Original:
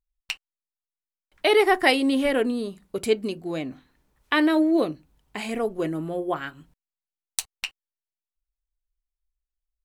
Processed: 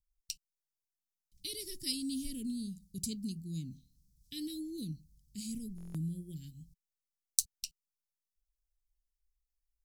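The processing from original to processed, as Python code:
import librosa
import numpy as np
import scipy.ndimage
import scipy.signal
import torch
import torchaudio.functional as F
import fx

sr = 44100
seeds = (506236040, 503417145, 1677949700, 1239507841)

y = scipy.signal.sosfilt(scipy.signal.ellip(3, 1.0, 80, [180.0, 5100.0], 'bandstop', fs=sr, output='sos'), x)
y = fx.buffer_glitch(y, sr, at_s=(5.76,), block=1024, repeats=7)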